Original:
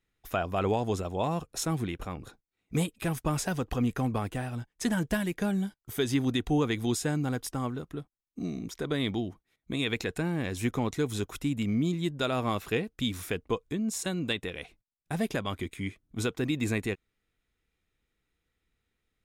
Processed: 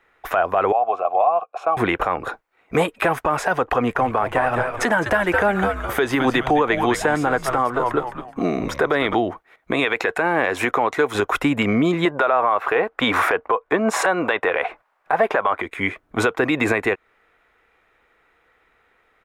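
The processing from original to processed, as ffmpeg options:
-filter_complex "[0:a]asettb=1/sr,asplit=3[s0][s1][s2];[s0]atrim=end=0.724[s3];[s1]atrim=start=0.72:end=1.77,asetpts=PTS-STARTPTS,afade=t=in:d=0.004:c=qsin,afade=t=out:st=1.046:d=0.004:c=qsin,asplit=3[s4][s5][s6];[s4]bandpass=f=730:t=q:w=8,volume=1[s7];[s5]bandpass=f=1090:t=q:w=8,volume=0.501[s8];[s6]bandpass=f=2440:t=q:w=8,volume=0.355[s9];[s7][s8][s9]amix=inputs=3:normalize=0[s10];[s2]atrim=start=1.766[s11];[s3][s10]acrossfade=d=0.004:c1=hsin:c2=qsin[s12];[s12][s11]acrossfade=d=0.004:c1=qsin:c2=hsin,asplit=3[s13][s14][s15];[s13]afade=t=out:st=3.95:d=0.02[s16];[s14]asplit=5[s17][s18][s19][s20][s21];[s18]adelay=210,afreqshift=-130,volume=0.355[s22];[s19]adelay=420,afreqshift=-260,volume=0.117[s23];[s20]adelay=630,afreqshift=-390,volume=0.0385[s24];[s21]adelay=840,afreqshift=-520,volume=0.0127[s25];[s17][s22][s23][s24][s25]amix=inputs=5:normalize=0,afade=t=in:st=3.95:d=0.02,afade=t=out:st=9.13:d=0.02[s26];[s15]afade=t=in:st=9.13:d=0.02[s27];[s16][s26][s27]amix=inputs=3:normalize=0,asettb=1/sr,asplit=3[s28][s29][s30];[s28]atrim=end=9.844[s31];[s29]atrim=start=9.84:end=11.15,asetpts=PTS-STARTPTS,afade=t=in:d=0.004:c=qsin,afade=t=out:st=1.306:d=0.004:c=qsin,lowshelf=f=210:g=-8.5[s32];[s30]atrim=start=11.146[s33];[s31][s32]acrossfade=d=0.004:c1=hsin:c2=qsin[s34];[s34][s33]acrossfade=d=0.004:c1=qsin:c2=hsin,asettb=1/sr,asplit=3[s35][s36][s37];[s35]atrim=end=12.054[s38];[s36]atrim=start=12.05:end=15.62,asetpts=PTS-STARTPTS,afade=t=in:d=0.004:c=qsin,afade=t=out:st=3.566:d=0.004:c=qsin,equalizer=f=970:w=0.39:g=13.5[s39];[s37]atrim=start=15.616[s40];[s38][s39]acrossfade=d=0.004:c1=hsin:c2=qsin[s41];[s41][s40]acrossfade=d=0.004:c1=qsin:c2=hsin,acrossover=split=490 2000:gain=0.0708 1 0.0708[s42][s43][s44];[s42][s43][s44]amix=inputs=3:normalize=0,acompressor=threshold=0.00631:ratio=3,alimiter=level_in=63.1:limit=0.891:release=50:level=0:latency=1,volume=0.447"

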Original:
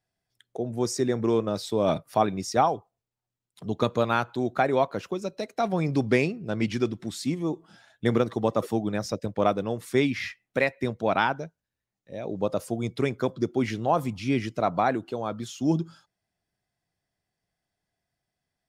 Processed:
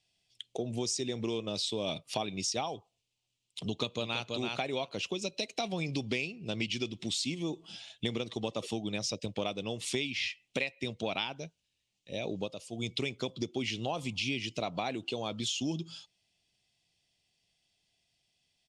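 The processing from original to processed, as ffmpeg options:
-filter_complex "[0:a]asplit=2[s0][s1];[s1]afade=t=in:st=3.65:d=0.01,afade=t=out:st=4.25:d=0.01,aecho=0:1:330|660:0.473151|0.0473151[s2];[s0][s2]amix=inputs=2:normalize=0,asplit=3[s3][s4][s5];[s3]atrim=end=12.55,asetpts=PTS-STARTPTS,afade=t=out:st=12.31:d=0.24:silence=0.188365[s6];[s4]atrim=start=12.55:end=12.71,asetpts=PTS-STARTPTS,volume=0.188[s7];[s5]atrim=start=12.71,asetpts=PTS-STARTPTS,afade=t=in:d=0.24:silence=0.188365[s8];[s6][s7][s8]concat=n=3:v=0:a=1,lowpass=f=8800:w=0.5412,lowpass=f=8800:w=1.3066,highshelf=f=2100:t=q:w=3:g=10,acompressor=threshold=0.0282:ratio=6"

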